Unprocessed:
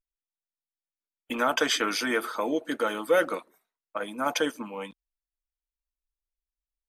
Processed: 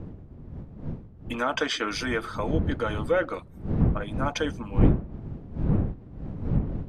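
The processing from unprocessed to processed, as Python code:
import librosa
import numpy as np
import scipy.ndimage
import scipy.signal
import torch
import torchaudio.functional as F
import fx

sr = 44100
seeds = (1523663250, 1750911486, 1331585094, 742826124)

y = fx.dmg_wind(x, sr, seeds[0], corner_hz=190.0, level_db=-29.0)
y = fx.low_shelf(y, sr, hz=220.0, db=3.5)
y = fx.env_lowpass_down(y, sr, base_hz=2500.0, full_db=-16.5)
y = y * 10.0 ** (-2.0 / 20.0)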